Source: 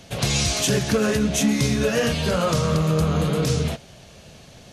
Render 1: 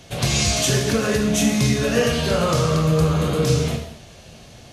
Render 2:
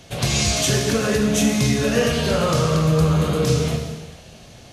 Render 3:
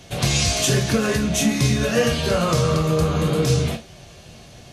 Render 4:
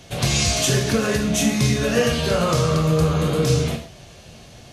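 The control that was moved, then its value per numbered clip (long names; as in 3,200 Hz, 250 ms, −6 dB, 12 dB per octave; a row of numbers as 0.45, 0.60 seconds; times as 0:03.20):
reverb whose tail is shaped and stops, gate: 290, 520, 90, 170 milliseconds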